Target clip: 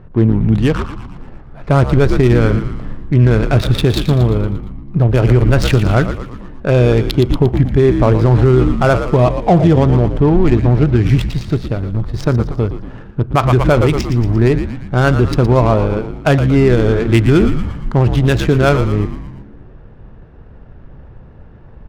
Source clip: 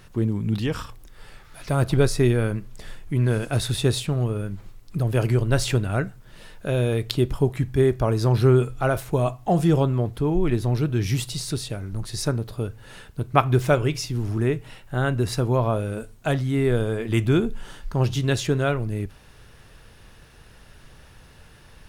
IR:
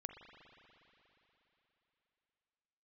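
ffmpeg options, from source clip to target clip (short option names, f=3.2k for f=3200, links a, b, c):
-filter_complex "[0:a]adynamicsmooth=sensitivity=3.5:basefreq=710,asplit=2[a][b];[b]asplit=6[c][d][e][f][g][h];[c]adelay=116,afreqshift=-78,volume=-10dB[i];[d]adelay=232,afreqshift=-156,volume=-15.2dB[j];[e]adelay=348,afreqshift=-234,volume=-20.4dB[k];[f]adelay=464,afreqshift=-312,volume=-25.6dB[l];[g]adelay=580,afreqshift=-390,volume=-30.8dB[m];[h]adelay=696,afreqshift=-468,volume=-36dB[n];[i][j][k][l][m][n]amix=inputs=6:normalize=0[o];[a][o]amix=inputs=2:normalize=0,alimiter=level_in=12.5dB:limit=-1dB:release=50:level=0:latency=1,volume=-1dB"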